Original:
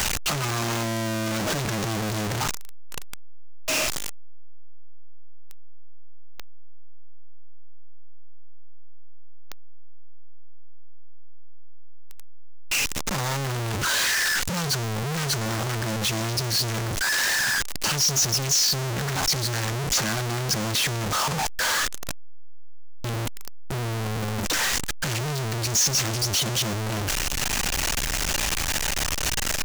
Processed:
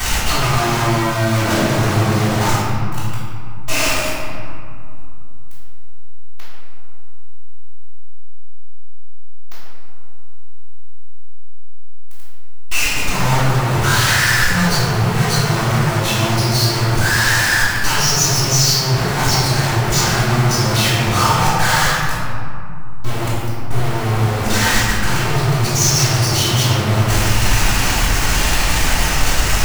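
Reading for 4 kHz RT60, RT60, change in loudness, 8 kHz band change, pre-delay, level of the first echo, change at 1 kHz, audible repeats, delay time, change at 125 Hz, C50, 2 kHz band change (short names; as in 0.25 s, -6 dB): 1.2 s, 2.4 s, +8.5 dB, +5.5 dB, 3 ms, none, +12.0 dB, none, none, +12.5 dB, -3.5 dB, +9.5 dB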